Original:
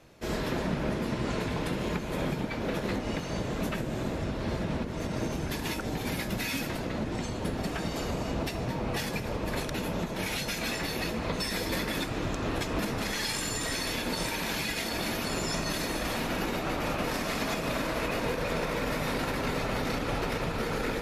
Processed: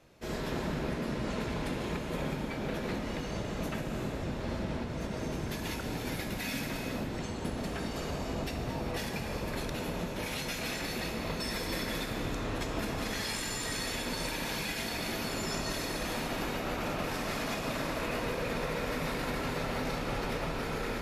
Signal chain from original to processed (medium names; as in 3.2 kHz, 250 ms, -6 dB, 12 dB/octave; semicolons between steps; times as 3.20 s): gated-style reverb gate 440 ms flat, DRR 3 dB; 11.11–11.75 s: short-mantissa float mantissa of 6-bit; trim -5 dB